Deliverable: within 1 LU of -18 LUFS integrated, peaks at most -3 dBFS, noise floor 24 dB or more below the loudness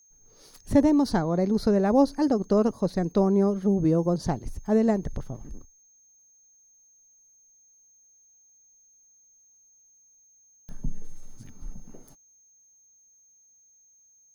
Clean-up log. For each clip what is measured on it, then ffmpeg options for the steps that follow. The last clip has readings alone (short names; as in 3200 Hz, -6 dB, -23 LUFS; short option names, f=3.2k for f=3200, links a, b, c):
steady tone 6400 Hz; tone level -57 dBFS; loudness -24.0 LUFS; peak -9.5 dBFS; loudness target -18.0 LUFS
-> -af "bandreject=f=6.4k:w=30"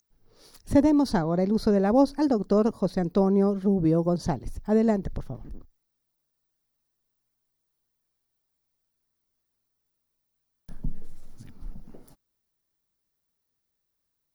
steady tone none; loudness -24.0 LUFS; peak -9.5 dBFS; loudness target -18.0 LUFS
-> -af "volume=6dB"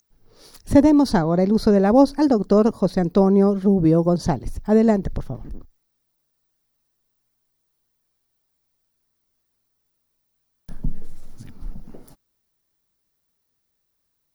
loudness -18.0 LUFS; peak -3.5 dBFS; noise floor -73 dBFS